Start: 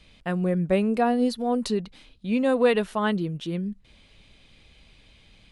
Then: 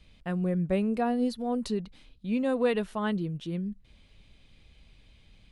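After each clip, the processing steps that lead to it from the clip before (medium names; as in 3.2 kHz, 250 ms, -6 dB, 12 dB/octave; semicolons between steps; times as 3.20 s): bass shelf 190 Hz +7.5 dB; trim -7 dB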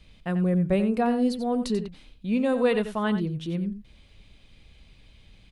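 delay 89 ms -10.5 dB; trim +3.5 dB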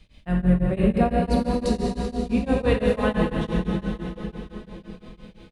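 octave divider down 2 oct, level -3 dB; plate-style reverb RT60 4.6 s, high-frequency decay 0.9×, DRR -3.5 dB; tremolo of two beating tones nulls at 5.9 Hz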